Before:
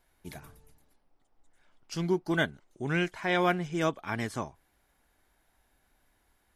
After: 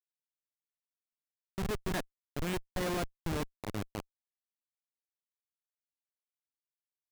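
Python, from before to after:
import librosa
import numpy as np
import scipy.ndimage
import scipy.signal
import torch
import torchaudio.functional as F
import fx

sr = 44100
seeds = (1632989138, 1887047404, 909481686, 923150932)

y = fx.speed_glide(x, sr, from_pct=134, to_pct=50)
y = fx.schmitt(y, sr, flips_db=-27.0)
y = y * 10.0 ** (2.0 / 20.0)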